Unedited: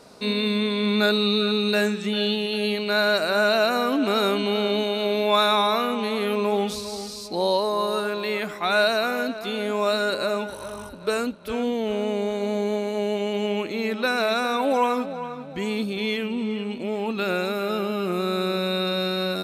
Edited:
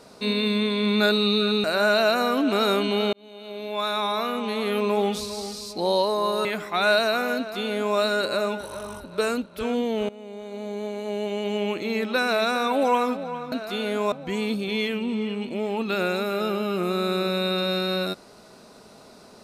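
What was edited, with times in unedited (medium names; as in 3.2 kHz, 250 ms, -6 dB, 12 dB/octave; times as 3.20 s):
1.64–3.19 s: delete
4.68–6.36 s: fade in linear
8.00–8.34 s: delete
9.26–9.86 s: copy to 15.41 s
11.98–13.69 s: fade in, from -19.5 dB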